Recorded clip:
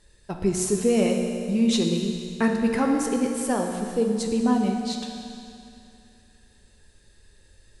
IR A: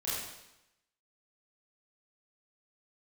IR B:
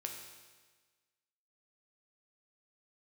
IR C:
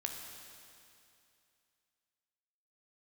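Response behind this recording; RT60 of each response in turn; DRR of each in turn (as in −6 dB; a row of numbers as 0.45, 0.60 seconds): C; 0.90, 1.4, 2.6 seconds; −10.5, 1.5, 2.0 decibels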